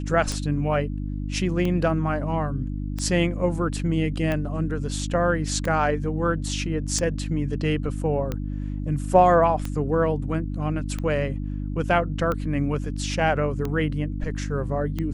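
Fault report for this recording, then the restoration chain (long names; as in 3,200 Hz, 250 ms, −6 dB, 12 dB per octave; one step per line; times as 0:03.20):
mains hum 50 Hz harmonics 6 −29 dBFS
scratch tick 45 rpm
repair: click removal
hum removal 50 Hz, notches 6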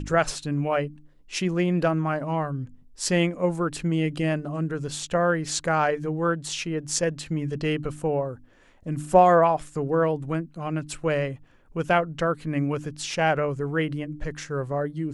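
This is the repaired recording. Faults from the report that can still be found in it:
none of them is left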